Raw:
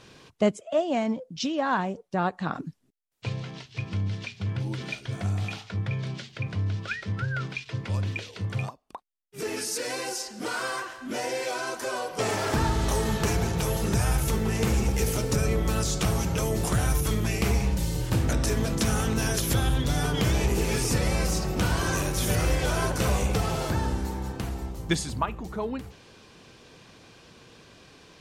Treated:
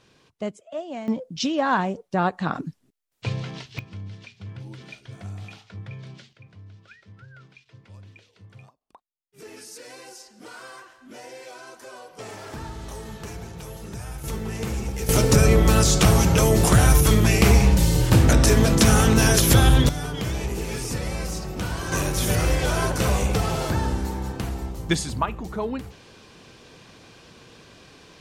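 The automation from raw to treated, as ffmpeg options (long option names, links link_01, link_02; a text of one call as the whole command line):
ffmpeg -i in.wav -af "asetnsamples=nb_out_samples=441:pad=0,asendcmd='1.08 volume volume 4dB;3.79 volume volume -8dB;6.33 volume volume -17.5dB;8.81 volume volume -11dB;14.24 volume volume -4dB;15.09 volume volume 9dB;19.89 volume volume -3.5dB;21.92 volume volume 3dB',volume=-7.5dB" out.wav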